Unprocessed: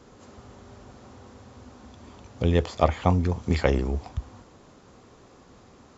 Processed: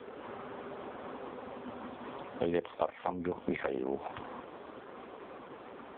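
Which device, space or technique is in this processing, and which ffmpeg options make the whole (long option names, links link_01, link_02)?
voicemail: -af "highpass=330,lowpass=3200,acompressor=threshold=-39dB:ratio=8,volume=11dB" -ar 8000 -c:a libopencore_amrnb -b:a 4750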